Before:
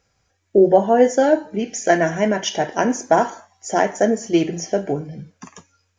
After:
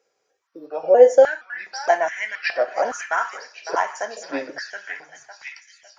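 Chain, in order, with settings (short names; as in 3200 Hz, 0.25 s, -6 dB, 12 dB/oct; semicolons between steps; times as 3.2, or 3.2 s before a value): trilling pitch shifter -3.5 st, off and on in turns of 0.47 s; delay with a stepping band-pass 0.555 s, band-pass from 1600 Hz, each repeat 0.7 oct, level -3.5 dB; stepped high-pass 2.4 Hz 430–2000 Hz; gain -6 dB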